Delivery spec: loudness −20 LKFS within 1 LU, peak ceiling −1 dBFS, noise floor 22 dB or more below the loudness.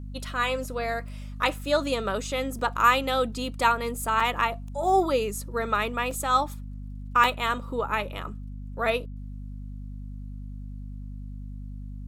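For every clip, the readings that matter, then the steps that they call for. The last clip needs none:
number of dropouts 4; longest dropout 3.2 ms; mains hum 50 Hz; hum harmonics up to 250 Hz; level of the hum −35 dBFS; integrated loudness −26.0 LKFS; sample peak −7.5 dBFS; target loudness −20.0 LKFS
→ repair the gap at 0:02.59/0:04.20/0:06.11/0:07.24, 3.2 ms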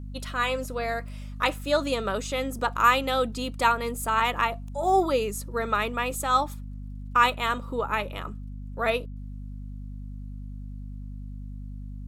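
number of dropouts 0; mains hum 50 Hz; hum harmonics up to 250 Hz; level of the hum −35 dBFS
→ hum removal 50 Hz, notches 5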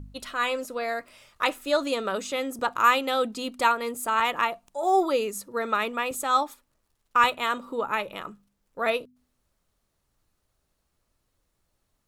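mains hum none found; integrated loudness −26.0 LKFS; sample peak −7.5 dBFS; target loudness −20.0 LKFS
→ level +6 dB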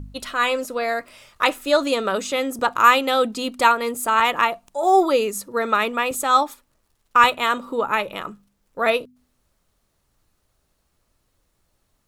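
integrated loudness −20.5 LKFS; sample peak −1.5 dBFS; background noise floor −70 dBFS

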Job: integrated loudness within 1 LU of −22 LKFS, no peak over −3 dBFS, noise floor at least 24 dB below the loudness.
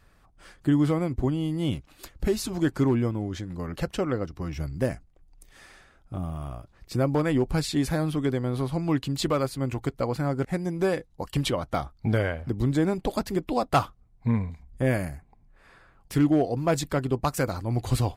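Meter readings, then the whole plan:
integrated loudness −27.5 LKFS; sample peak −11.5 dBFS; target loudness −22.0 LKFS
→ level +5.5 dB

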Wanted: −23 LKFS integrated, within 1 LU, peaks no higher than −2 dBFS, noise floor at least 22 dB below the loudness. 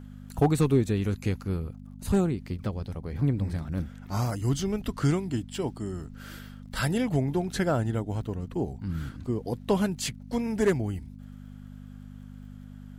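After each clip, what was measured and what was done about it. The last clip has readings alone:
crackle rate 38 per second; mains hum 50 Hz; hum harmonics up to 250 Hz; level of the hum −42 dBFS; integrated loudness −29.0 LKFS; sample peak −12.5 dBFS; target loudness −23.0 LKFS
→ click removal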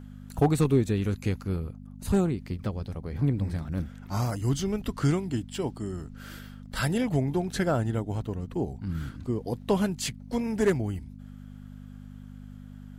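crackle rate 0.077 per second; mains hum 50 Hz; hum harmonics up to 250 Hz; level of the hum −42 dBFS
→ hum removal 50 Hz, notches 5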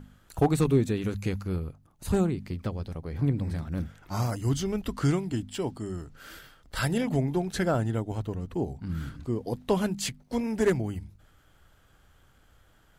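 mains hum none found; integrated loudness −29.5 LKFS; sample peak −12.5 dBFS; target loudness −23.0 LKFS
→ level +6.5 dB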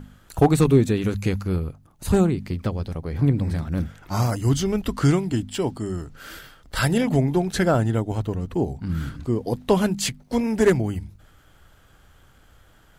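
integrated loudness −23.0 LKFS; sample peak −6.0 dBFS; background noise floor −54 dBFS

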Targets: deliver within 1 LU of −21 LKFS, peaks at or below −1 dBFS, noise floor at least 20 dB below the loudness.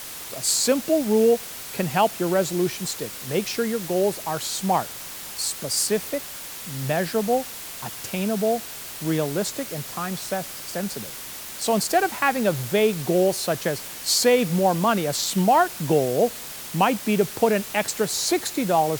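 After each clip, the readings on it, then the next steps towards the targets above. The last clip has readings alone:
background noise floor −37 dBFS; target noise floor −44 dBFS; integrated loudness −23.5 LKFS; sample peak −6.5 dBFS; target loudness −21.0 LKFS
→ noise reduction from a noise print 7 dB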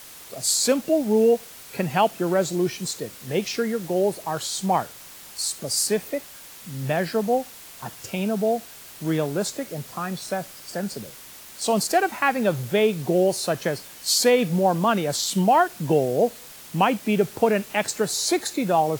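background noise floor −43 dBFS; target noise floor −44 dBFS
→ noise reduction from a noise print 6 dB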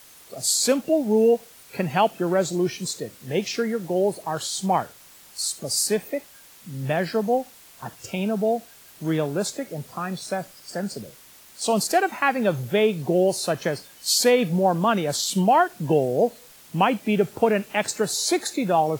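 background noise floor −49 dBFS; integrated loudness −23.5 LKFS; sample peak −6.5 dBFS; target loudness −21.0 LKFS
→ level +2.5 dB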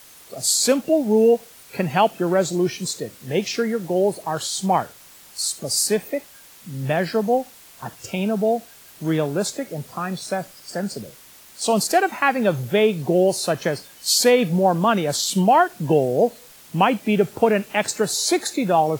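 integrated loudness −21.0 LKFS; sample peak −4.0 dBFS; background noise floor −47 dBFS

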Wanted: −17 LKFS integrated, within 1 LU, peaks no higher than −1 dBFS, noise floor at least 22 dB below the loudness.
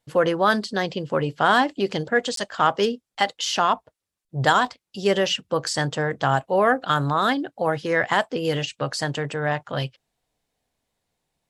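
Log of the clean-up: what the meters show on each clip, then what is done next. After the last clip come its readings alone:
number of dropouts 1; longest dropout 13 ms; integrated loudness −23.0 LKFS; sample peak −4.5 dBFS; target loudness −17.0 LKFS
→ repair the gap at 0:02.36, 13 ms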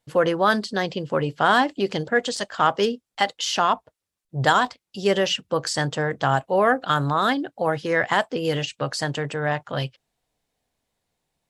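number of dropouts 0; integrated loudness −23.0 LKFS; sample peak −4.5 dBFS; target loudness −17.0 LKFS
→ level +6 dB
brickwall limiter −1 dBFS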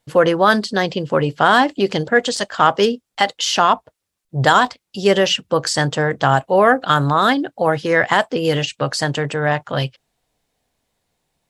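integrated loudness −17.0 LKFS; sample peak −1.0 dBFS; background noise floor −78 dBFS

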